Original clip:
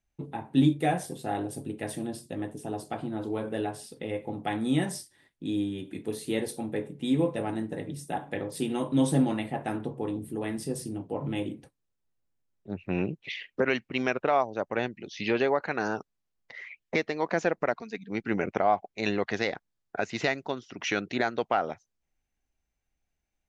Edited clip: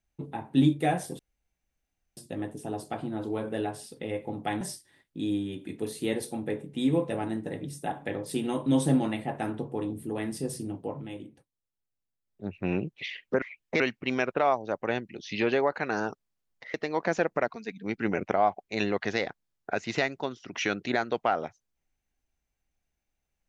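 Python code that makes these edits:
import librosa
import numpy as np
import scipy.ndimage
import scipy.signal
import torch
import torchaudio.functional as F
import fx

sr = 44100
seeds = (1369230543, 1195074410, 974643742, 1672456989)

y = fx.edit(x, sr, fx.room_tone_fill(start_s=1.19, length_s=0.98),
    fx.cut(start_s=4.61, length_s=0.26),
    fx.fade_down_up(start_s=11.09, length_s=1.61, db=-8.5, fade_s=0.2),
    fx.move(start_s=16.62, length_s=0.38, to_s=13.68), tone=tone)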